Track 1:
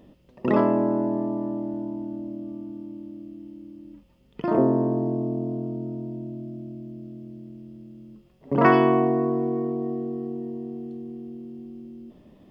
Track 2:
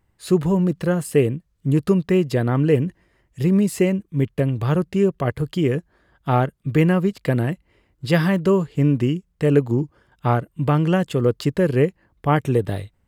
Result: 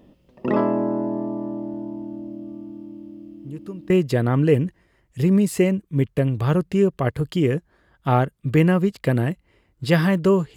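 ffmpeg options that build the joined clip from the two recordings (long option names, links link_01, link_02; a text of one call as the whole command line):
ffmpeg -i cue0.wav -i cue1.wav -filter_complex "[1:a]asplit=2[link_01][link_02];[0:a]apad=whole_dur=10.56,atrim=end=10.56,atrim=end=3.902[link_03];[link_02]atrim=start=2.108:end=8.77[link_04];[link_01]atrim=start=1.5:end=2.11,asetpts=PTS-STARTPTS,volume=-17dB,afade=type=in:duration=0.004:curve=hsin,afade=type=out:start_time=0.606:duration=0.004:curve=hsin,adelay=145089S[link_05];[link_03][link_04]acrossfade=duration=0.004:curve1=hsin:curve2=hsin[link_06];[link_06][link_05]amix=inputs=2:normalize=0" out.wav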